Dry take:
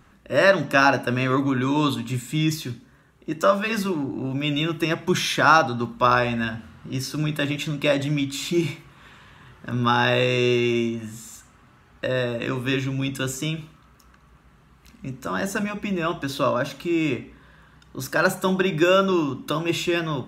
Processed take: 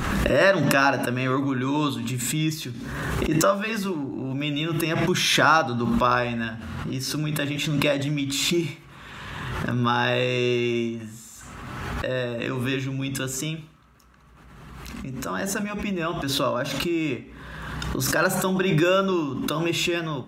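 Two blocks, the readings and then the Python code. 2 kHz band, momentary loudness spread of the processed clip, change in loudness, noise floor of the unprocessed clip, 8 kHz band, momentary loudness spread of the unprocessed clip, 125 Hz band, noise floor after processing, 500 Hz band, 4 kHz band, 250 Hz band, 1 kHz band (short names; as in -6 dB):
-1.0 dB, 15 LU, -1.5 dB, -55 dBFS, +4.5 dB, 14 LU, 0.0 dB, -46 dBFS, -2.0 dB, +1.0 dB, -1.0 dB, -2.0 dB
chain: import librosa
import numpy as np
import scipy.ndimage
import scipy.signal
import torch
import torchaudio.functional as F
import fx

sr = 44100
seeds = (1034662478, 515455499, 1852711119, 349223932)

y = fx.pre_swell(x, sr, db_per_s=26.0)
y = y * 10.0 ** (-3.0 / 20.0)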